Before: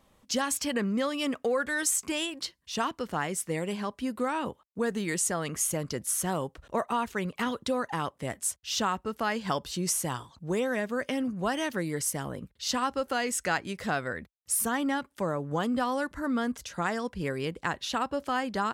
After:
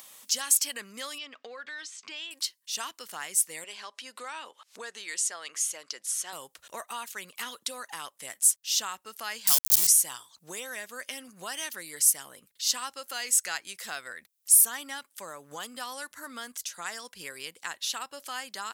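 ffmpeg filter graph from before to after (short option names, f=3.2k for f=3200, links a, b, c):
-filter_complex "[0:a]asettb=1/sr,asplit=3[a][b][c];[a]atrim=end=1.184[d];[b]atrim=start=1.18:end=2.31,asetpts=PTS-STARTPTS,afade=t=in:d=0.004:c=qsin,afade=t=out:st=1.126:d=0.004:c=qsin,acompressor=threshold=-36dB:ratio=2:attack=3.2:release=140:knee=1:detection=peak,lowpass=f=4.5k:w=0.5412,lowpass=f=4.5k:w=1.3066[e];[c]atrim=start=2.306[f];[d][e]acrossfade=d=0.004:c1=hsin:c2=qsin[g];[g][f]acrossfade=d=0.004:c1=qsin:c2=hsin,asettb=1/sr,asplit=3[h][i][j];[h]atrim=end=3.644[k];[i]atrim=start=3.64:end=6.33,asetpts=PTS-STARTPTS,afade=t=in:d=0.004:c=qsin,afade=t=out:st=2.686:d=0.004:c=qsin,acompressor=mode=upward:threshold=-31dB:ratio=2.5:attack=3.2:release=140:knee=2.83:detection=peak,highpass=370,lowpass=5.5k[l];[j]atrim=start=6.326[m];[k][l]acrossfade=d=0.004:c1=hsin:c2=qsin[n];[n][m]acrossfade=d=0.004:c1=qsin:c2=hsin,asettb=1/sr,asplit=3[o][p][q];[o]atrim=end=9.474[r];[p]atrim=start=9.47:end=9.87,asetpts=PTS-STARTPTS,afade=t=in:d=0.004:c=qsin,afade=t=out:st=0.396:d=0.004:c=qsin,highpass=110,aeval=exprs='val(0)*gte(abs(val(0)),0.0282)':c=same,bass=f=250:g=8,treble=f=4k:g=15[s];[q]atrim=start=9.866[t];[r][s]acrossfade=d=0.004:c1=hsin:c2=qsin[u];[u][t]acrossfade=d=0.004:c1=qsin:c2=hsin,aderivative,acompressor=mode=upward:threshold=-45dB:ratio=2.5,volume=8dB"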